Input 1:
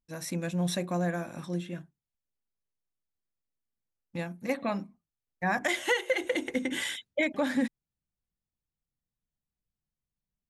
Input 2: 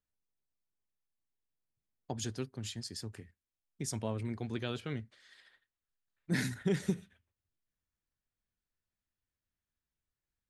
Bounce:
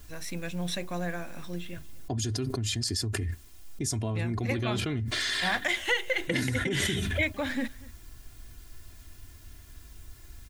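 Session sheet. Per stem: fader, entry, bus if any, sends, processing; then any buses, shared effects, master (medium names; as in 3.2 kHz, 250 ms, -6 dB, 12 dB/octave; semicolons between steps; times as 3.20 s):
-4.5 dB, 0.00 s, no send, echo send -22 dB, peaking EQ 2.8 kHz +8 dB 1.9 oct
-6.5 dB, 0.00 s, no send, no echo send, tone controls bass +10 dB, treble +3 dB; comb 2.9 ms, depth 73%; level flattener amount 100%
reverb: none
echo: delay 238 ms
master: none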